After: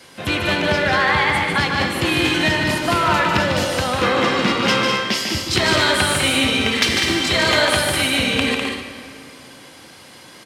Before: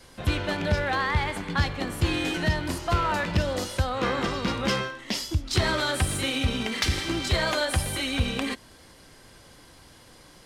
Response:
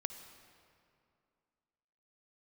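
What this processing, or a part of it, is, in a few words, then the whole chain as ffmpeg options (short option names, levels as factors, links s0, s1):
stadium PA: -filter_complex "[0:a]highpass=150,equalizer=f=2500:t=o:w=1.1:g=4.5,aecho=1:1:148.7|201.2|259.5:0.562|0.501|0.316[s0];[1:a]atrim=start_sample=2205[s1];[s0][s1]afir=irnorm=-1:irlink=0,volume=2.37"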